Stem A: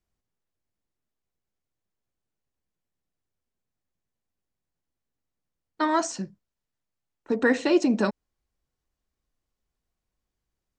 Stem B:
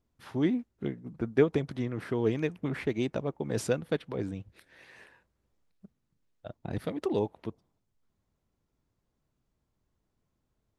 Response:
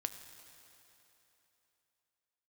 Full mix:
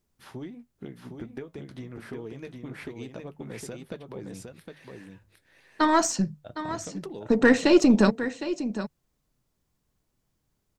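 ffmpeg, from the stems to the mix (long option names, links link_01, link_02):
-filter_complex "[0:a]equalizer=frequency=150:width_type=o:width=0.65:gain=12.5,volume=2dB,asplit=2[link_01][link_02];[link_02]volume=-12dB[link_03];[1:a]flanger=delay=5.1:depth=4:regen=-67:speed=0.26:shape=sinusoidal,acompressor=threshold=-38dB:ratio=16,volume=3dB,asplit=2[link_04][link_05];[link_05]volume=-4.5dB[link_06];[link_03][link_06]amix=inputs=2:normalize=0,aecho=0:1:760:1[link_07];[link_01][link_04][link_07]amix=inputs=3:normalize=0,highshelf=frequency=5600:gain=6.5,bandreject=frequency=50:width_type=h:width=6,bandreject=frequency=100:width_type=h:width=6,bandreject=frequency=150:width_type=h:width=6,aeval=exprs='0.501*(cos(1*acos(clip(val(0)/0.501,-1,1)))-cos(1*PI/2))+0.02*(cos(6*acos(clip(val(0)/0.501,-1,1)))-cos(6*PI/2))':channel_layout=same"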